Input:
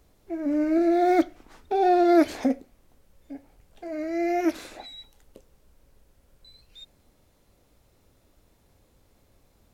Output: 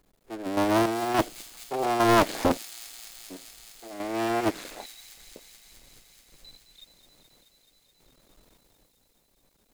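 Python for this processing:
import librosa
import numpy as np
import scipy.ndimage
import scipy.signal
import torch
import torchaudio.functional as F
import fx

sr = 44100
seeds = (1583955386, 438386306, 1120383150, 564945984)

p1 = fx.cycle_switch(x, sr, every=3, mode='muted')
p2 = fx.peak_eq(p1, sr, hz=79.0, db=-15.0, octaves=0.72)
p3 = fx.notch(p2, sr, hz=5700.0, q=13.0)
p4 = fx.rider(p3, sr, range_db=5, speed_s=2.0)
p5 = p3 + (p4 * 10.0 ** (2.5 / 20.0))
p6 = fx.quant_dither(p5, sr, seeds[0], bits=10, dither='none')
p7 = fx.tremolo_random(p6, sr, seeds[1], hz=3.5, depth_pct=80)
p8 = p7 + fx.echo_wet_highpass(p7, sr, ms=214, feedback_pct=83, hz=4900.0, wet_db=-5, dry=0)
p9 = fx.doppler_dist(p8, sr, depth_ms=0.92)
y = p9 * 10.0 ** (-3.0 / 20.0)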